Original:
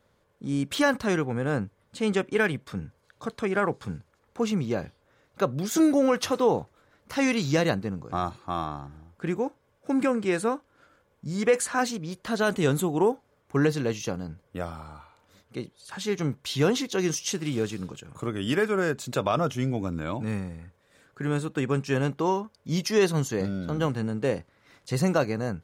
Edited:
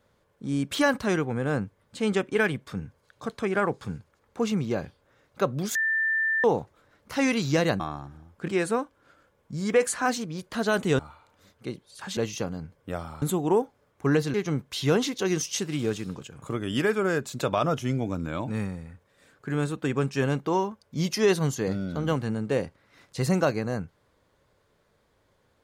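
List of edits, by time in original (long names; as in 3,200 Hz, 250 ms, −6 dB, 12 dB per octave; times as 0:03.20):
0:05.75–0:06.44: beep over 1,780 Hz −22 dBFS
0:07.80–0:08.60: remove
0:09.28–0:10.21: remove
0:12.72–0:13.84: swap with 0:14.89–0:16.07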